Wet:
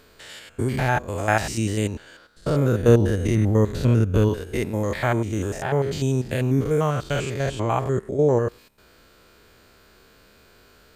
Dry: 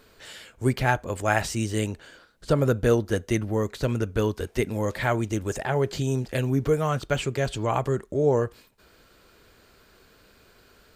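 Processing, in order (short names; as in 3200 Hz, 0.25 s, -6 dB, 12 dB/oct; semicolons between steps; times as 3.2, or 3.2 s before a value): stepped spectrum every 0.1 s; 2.88–4.29 low shelf 230 Hz +8 dB; gain +4 dB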